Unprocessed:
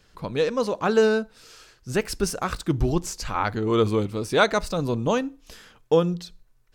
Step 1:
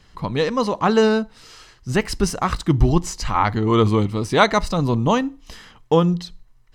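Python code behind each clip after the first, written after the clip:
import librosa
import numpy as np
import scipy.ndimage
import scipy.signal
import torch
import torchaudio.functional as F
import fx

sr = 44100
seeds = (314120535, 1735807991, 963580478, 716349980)

y = fx.high_shelf(x, sr, hz=8800.0, db=-10.5)
y = y + 0.39 * np.pad(y, (int(1.0 * sr / 1000.0), 0))[:len(y)]
y = F.gain(torch.from_numpy(y), 5.5).numpy()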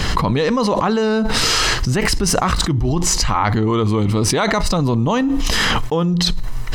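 y = fx.env_flatten(x, sr, amount_pct=100)
y = F.gain(torch.from_numpy(y), -6.5).numpy()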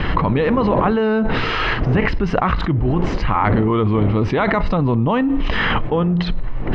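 y = fx.dmg_wind(x, sr, seeds[0], corner_hz=360.0, level_db=-28.0)
y = scipy.signal.sosfilt(scipy.signal.butter(4, 2800.0, 'lowpass', fs=sr, output='sos'), y)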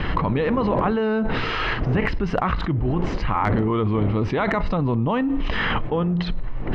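y = np.clip(x, -10.0 ** (-5.0 / 20.0), 10.0 ** (-5.0 / 20.0))
y = F.gain(torch.from_numpy(y), -4.5).numpy()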